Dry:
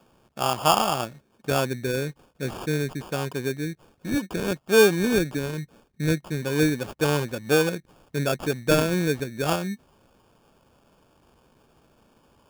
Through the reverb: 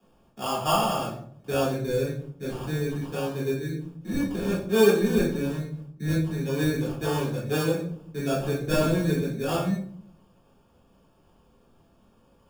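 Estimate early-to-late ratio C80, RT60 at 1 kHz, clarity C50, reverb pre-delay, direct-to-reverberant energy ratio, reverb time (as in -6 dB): 9.0 dB, 0.50 s, 4.5 dB, 3 ms, -8.5 dB, 0.60 s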